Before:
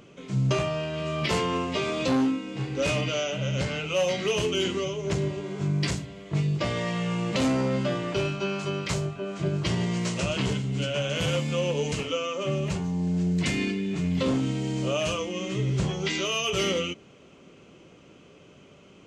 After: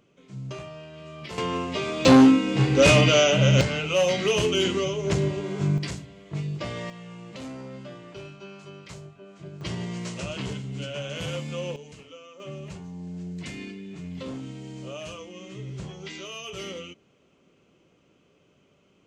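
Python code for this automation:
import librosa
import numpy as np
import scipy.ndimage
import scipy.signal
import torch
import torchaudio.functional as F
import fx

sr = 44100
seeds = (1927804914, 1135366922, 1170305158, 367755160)

y = fx.gain(x, sr, db=fx.steps((0.0, -12.0), (1.38, -1.0), (2.05, 10.0), (3.61, 3.0), (5.78, -5.0), (6.9, -14.0), (9.61, -5.5), (11.76, -17.0), (12.4, -10.5)))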